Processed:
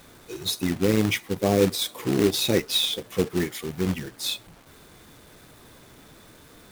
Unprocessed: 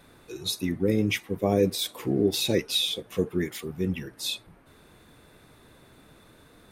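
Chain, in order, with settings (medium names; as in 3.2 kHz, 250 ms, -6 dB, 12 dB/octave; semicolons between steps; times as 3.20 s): band-stop 2.7 kHz, Q 19; companded quantiser 4-bit; trim +2 dB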